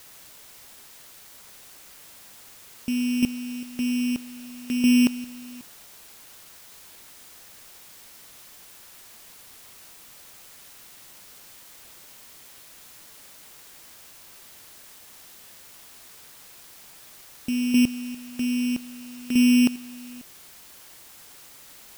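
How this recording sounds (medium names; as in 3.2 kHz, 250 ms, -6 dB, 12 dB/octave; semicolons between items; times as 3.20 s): a buzz of ramps at a fixed pitch in blocks of 16 samples; chopped level 0.62 Hz, depth 60%, duty 25%; a quantiser's noise floor 8-bit, dither triangular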